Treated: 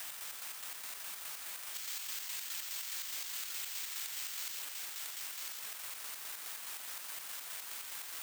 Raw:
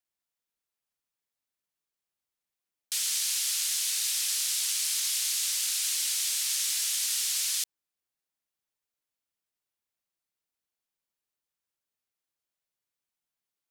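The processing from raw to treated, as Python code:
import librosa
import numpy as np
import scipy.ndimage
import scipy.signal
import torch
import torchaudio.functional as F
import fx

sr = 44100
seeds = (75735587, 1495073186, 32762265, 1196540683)

y = x + 0.5 * 10.0 ** (-25.5 / 20.0) * np.diff(np.sign(x), prepend=np.sign(x[:1]))
y = scipy.signal.sosfilt(scipy.signal.butter(2, 1200.0, 'lowpass', fs=sr, output='sos'), y)
y = fx.tilt_eq(y, sr, slope=3.0)
y = fx.stretch_vocoder_free(y, sr, factor=0.6)
y = fx.chopper(y, sr, hz=4.8, depth_pct=65, duty_pct=50)
y = (np.kron(y[::4], np.eye(4)[0]) * 4)[:len(y)]
y = fx.low_shelf(y, sr, hz=260.0, db=-8.0)
y = y + 10.0 ** (-7.5 / 20.0) * np.pad(y, (int(1000 * sr / 1000.0), 0))[:len(y)]
y = fx.env_flatten(y, sr, amount_pct=70)
y = y * librosa.db_to_amplitude(2.5)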